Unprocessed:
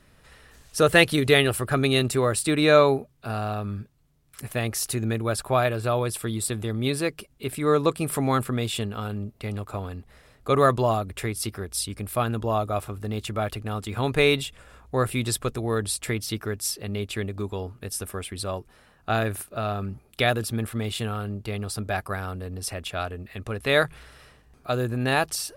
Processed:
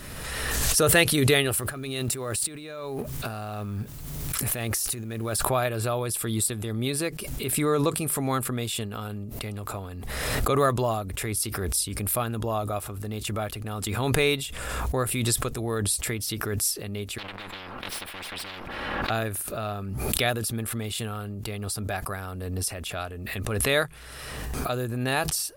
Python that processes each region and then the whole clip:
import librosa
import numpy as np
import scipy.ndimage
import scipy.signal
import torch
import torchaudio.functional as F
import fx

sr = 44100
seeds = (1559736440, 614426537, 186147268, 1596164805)

y = fx.chain(x, sr, fx.law_mismatch(coded='mu'),
    fx.over_compress(threshold_db=-33.0, ratio=-1.0), at=(1.56, 5.45))
y = fx.chain(y, sr, fx.lower_of_two(delay_ms=3.6),
    fx.air_absorb(metres=410.0),
    fx.spectral_comp(ratio=10.0), at=(17.18, 19.1))
y = fx.high_shelf(y, sr, hz=6900.0, db=10.0)
y = fx.pre_swell(y, sr, db_per_s=27.0)
y = y * 10.0 ** (-4.0 / 20.0)